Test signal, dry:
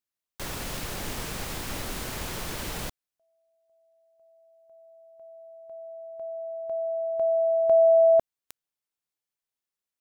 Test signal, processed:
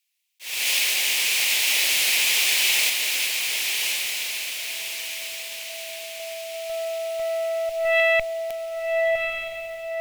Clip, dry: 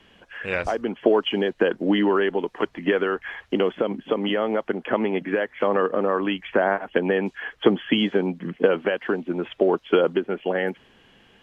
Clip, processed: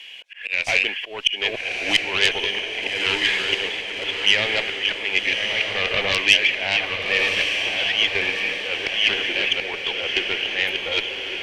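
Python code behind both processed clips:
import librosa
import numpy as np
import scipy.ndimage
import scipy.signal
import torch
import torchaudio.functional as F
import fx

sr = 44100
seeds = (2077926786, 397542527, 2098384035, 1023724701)

p1 = fx.reverse_delay(x, sr, ms=654, wet_db=-7)
p2 = scipy.signal.sosfilt(scipy.signal.butter(2, 720.0, 'highpass', fs=sr, output='sos'), p1)
p3 = fx.auto_swell(p2, sr, attack_ms=293.0)
p4 = fx.cheby_harmonics(p3, sr, harmonics=(4, 5, 8), levels_db=(-11, -11, -30), full_scale_db=-13.0)
p5 = fx.high_shelf_res(p4, sr, hz=1800.0, db=10.0, q=3.0)
p6 = p5 + fx.echo_diffused(p5, sr, ms=1190, feedback_pct=51, wet_db=-4.5, dry=0)
y = F.gain(torch.from_numpy(p6), -3.5).numpy()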